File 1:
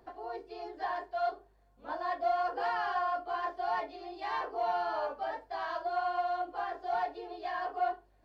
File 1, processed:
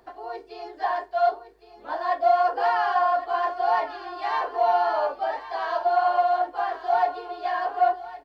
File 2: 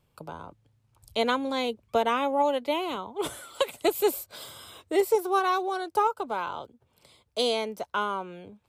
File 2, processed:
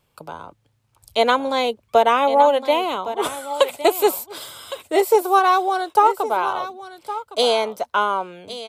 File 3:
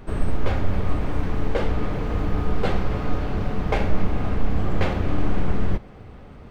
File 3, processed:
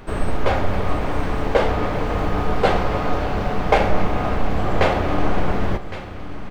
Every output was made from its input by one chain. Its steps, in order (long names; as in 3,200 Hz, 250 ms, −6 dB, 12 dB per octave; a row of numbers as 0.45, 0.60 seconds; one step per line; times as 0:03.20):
low-shelf EQ 400 Hz −7.5 dB
single-tap delay 1,112 ms −12 dB
dynamic equaliser 680 Hz, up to +6 dB, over −39 dBFS, Q 1
level +7 dB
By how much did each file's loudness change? +10.5, +8.5, +4.5 LU